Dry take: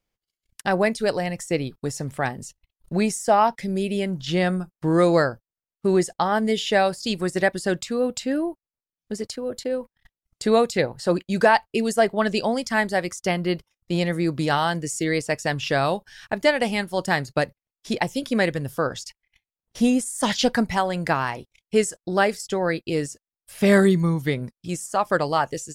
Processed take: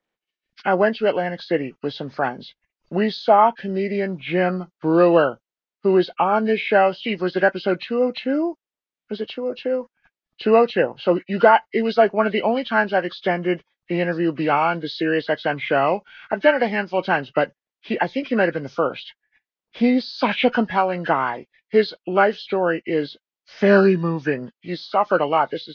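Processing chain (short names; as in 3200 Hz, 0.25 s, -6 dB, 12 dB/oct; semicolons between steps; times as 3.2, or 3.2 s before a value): nonlinear frequency compression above 1200 Hz 1.5:1; three-band isolator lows -19 dB, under 190 Hz, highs -16 dB, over 3900 Hz; gain +4 dB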